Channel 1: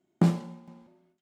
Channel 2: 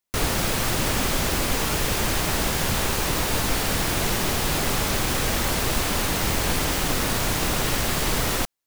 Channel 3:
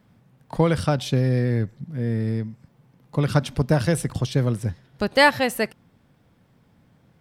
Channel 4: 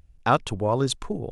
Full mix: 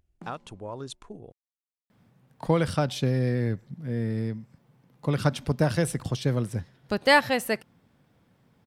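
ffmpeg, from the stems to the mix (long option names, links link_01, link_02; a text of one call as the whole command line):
ffmpeg -i stem1.wav -i stem2.wav -i stem3.wav -i stem4.wav -filter_complex "[0:a]acompressor=threshold=-33dB:ratio=2,volume=-15.5dB[link_01];[2:a]adelay=1900,volume=-3dB[link_02];[3:a]acompressor=threshold=-18dB:ratio=6,volume=-12.5dB[link_03];[link_01][link_02][link_03]amix=inputs=3:normalize=0,lowshelf=frequency=82:gain=-6" out.wav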